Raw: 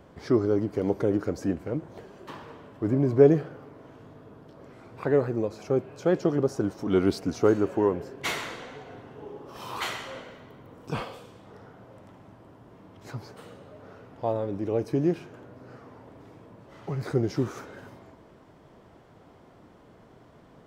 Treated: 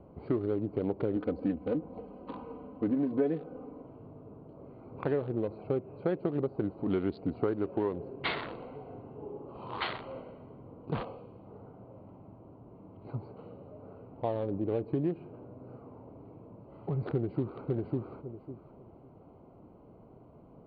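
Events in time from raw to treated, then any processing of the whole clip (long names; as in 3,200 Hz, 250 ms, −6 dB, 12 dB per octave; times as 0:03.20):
0:01.16–0:03.83: comb filter 4 ms, depth 91%
0:04.51–0:04.98: delay throw 360 ms, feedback 60%, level −1.5 dB
0:17.12–0:17.66: delay throw 550 ms, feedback 20%, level −3.5 dB
whole clip: adaptive Wiener filter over 25 samples; Butterworth low-pass 4,500 Hz 96 dB per octave; downward compressor 5 to 1, threshold −27 dBFS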